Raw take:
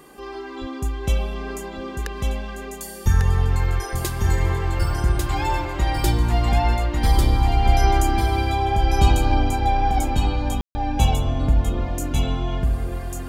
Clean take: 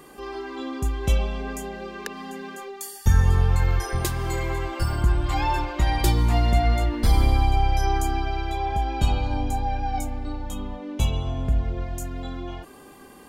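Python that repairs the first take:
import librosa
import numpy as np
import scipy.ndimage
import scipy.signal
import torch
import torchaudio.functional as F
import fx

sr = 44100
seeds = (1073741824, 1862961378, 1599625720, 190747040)

y = fx.highpass(x, sr, hz=140.0, slope=24, at=(0.6, 0.72), fade=0.02)
y = fx.fix_ambience(y, sr, seeds[0], print_start_s=0.0, print_end_s=0.5, start_s=10.61, end_s=10.75)
y = fx.fix_echo_inverse(y, sr, delay_ms=1146, level_db=-3.5)
y = fx.fix_level(y, sr, at_s=7.65, step_db=-4.5)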